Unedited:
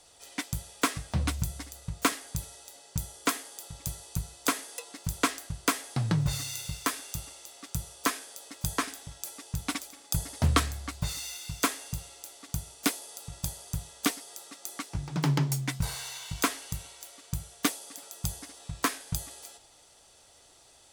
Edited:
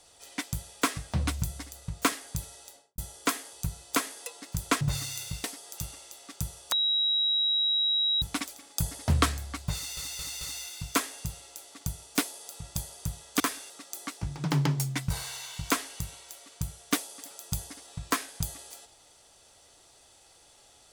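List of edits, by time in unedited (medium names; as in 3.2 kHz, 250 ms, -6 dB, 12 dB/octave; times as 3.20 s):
2.67–2.98 s: studio fade out
3.53–4.05 s: delete
5.33–6.19 s: delete
6.82–7.12 s: swap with 14.08–14.42 s
8.06–9.56 s: bleep 3.85 kHz -23 dBFS
11.09 s: stutter 0.22 s, 4 plays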